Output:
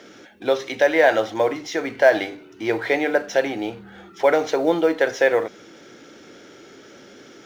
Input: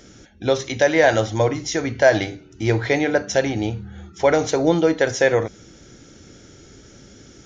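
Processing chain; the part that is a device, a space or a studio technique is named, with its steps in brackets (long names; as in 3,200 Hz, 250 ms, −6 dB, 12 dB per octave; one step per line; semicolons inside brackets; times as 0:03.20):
phone line with mismatched companding (band-pass filter 340–3,500 Hz; mu-law and A-law mismatch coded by mu)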